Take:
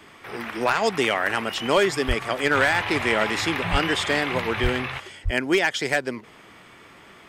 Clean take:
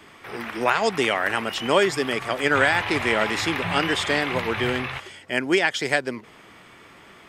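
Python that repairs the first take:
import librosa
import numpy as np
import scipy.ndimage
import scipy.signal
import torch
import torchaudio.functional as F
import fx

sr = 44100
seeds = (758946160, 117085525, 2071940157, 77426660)

y = fx.fix_declip(x, sr, threshold_db=-11.0)
y = fx.fix_deplosive(y, sr, at_s=(2.07, 3.71, 4.62, 5.24))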